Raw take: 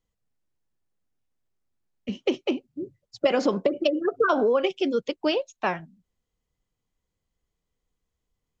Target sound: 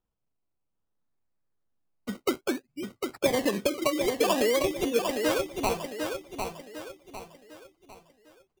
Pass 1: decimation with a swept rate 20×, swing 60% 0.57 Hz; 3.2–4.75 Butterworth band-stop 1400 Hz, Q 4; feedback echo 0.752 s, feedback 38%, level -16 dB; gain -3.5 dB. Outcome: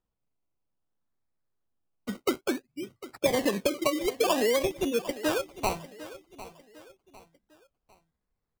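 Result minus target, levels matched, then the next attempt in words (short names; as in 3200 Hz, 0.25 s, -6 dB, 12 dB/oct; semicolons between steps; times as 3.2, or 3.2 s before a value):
echo-to-direct -10.5 dB
decimation with a swept rate 20×, swing 60% 0.57 Hz; 3.2–4.75 Butterworth band-stop 1400 Hz, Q 4; feedback echo 0.752 s, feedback 38%, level -5.5 dB; gain -3.5 dB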